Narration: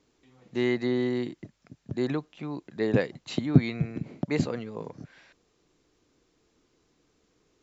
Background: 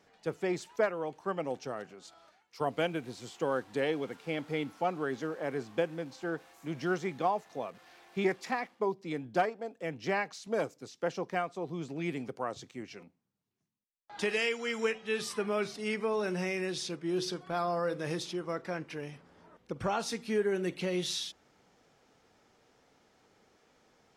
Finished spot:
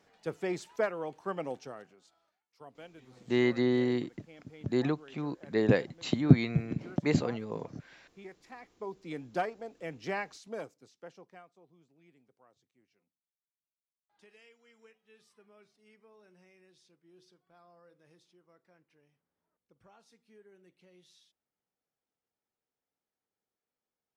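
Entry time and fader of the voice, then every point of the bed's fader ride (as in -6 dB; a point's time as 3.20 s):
2.75 s, -0.5 dB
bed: 1.47 s -1.5 dB
2.41 s -19 dB
8.40 s -19 dB
9.11 s -3.5 dB
10.26 s -3.5 dB
11.93 s -29 dB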